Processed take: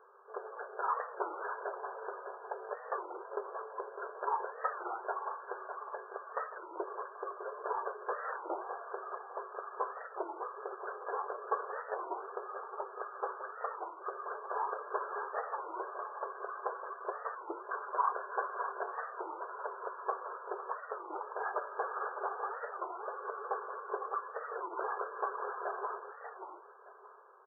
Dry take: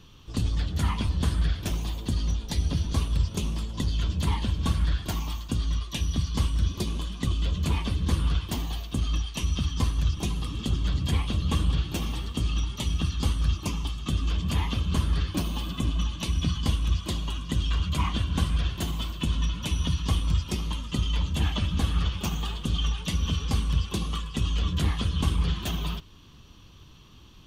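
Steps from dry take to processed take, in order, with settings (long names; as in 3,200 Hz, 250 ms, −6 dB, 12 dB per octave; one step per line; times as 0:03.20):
linear-phase brick-wall band-pass 380–1,700 Hz
repeating echo 604 ms, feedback 32%, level −9 dB
wow of a warped record 33 1/3 rpm, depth 250 cents
level +3.5 dB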